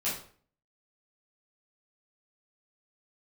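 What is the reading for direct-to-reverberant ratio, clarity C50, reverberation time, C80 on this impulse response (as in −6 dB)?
−10.5 dB, 4.5 dB, 0.50 s, 10.0 dB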